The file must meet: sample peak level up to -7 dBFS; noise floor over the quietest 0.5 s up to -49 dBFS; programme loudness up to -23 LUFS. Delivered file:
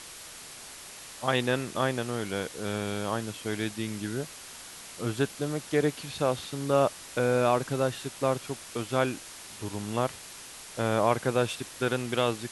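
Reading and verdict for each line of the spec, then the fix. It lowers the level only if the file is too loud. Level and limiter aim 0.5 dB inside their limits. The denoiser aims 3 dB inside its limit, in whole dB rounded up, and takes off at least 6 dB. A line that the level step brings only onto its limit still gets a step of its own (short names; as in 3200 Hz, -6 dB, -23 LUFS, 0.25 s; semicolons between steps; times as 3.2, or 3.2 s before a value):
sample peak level -10.5 dBFS: OK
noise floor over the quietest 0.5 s -45 dBFS: fail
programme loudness -29.5 LUFS: OK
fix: denoiser 7 dB, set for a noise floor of -45 dBFS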